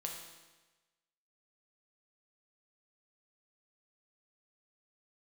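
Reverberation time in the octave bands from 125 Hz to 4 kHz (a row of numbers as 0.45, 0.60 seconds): 1.2, 1.1, 1.2, 1.2, 1.2, 1.1 seconds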